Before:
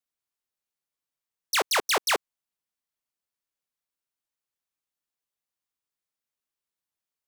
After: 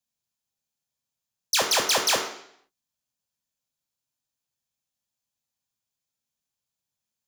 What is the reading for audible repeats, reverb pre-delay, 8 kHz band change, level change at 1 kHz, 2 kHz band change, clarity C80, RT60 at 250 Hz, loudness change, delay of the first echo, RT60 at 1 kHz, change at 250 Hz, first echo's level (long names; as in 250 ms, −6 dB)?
no echo audible, 3 ms, +6.0 dB, 0.0 dB, 0.0 dB, 10.0 dB, 0.70 s, +3.0 dB, no echo audible, 0.70 s, +1.5 dB, no echo audible